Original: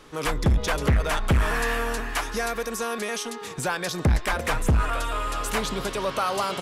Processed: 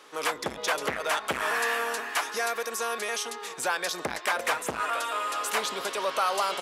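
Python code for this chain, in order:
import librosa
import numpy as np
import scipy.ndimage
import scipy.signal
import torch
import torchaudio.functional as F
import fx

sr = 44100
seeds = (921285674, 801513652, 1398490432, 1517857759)

y = scipy.signal.sosfilt(scipy.signal.butter(2, 490.0, 'highpass', fs=sr, output='sos'), x)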